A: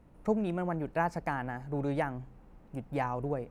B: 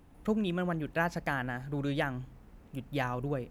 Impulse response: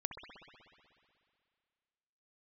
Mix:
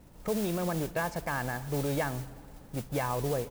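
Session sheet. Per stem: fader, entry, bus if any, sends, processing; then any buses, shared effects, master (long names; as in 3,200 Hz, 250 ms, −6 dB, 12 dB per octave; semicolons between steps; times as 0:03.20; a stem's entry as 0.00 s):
+2.0 dB, 0.00 s, send −11 dB, brickwall limiter −26 dBFS, peak gain reduction 9.5 dB; noise that follows the level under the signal 13 dB
−8.0 dB, 1.4 ms, no send, no processing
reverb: on, RT60 2.3 s, pre-delay 61 ms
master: no processing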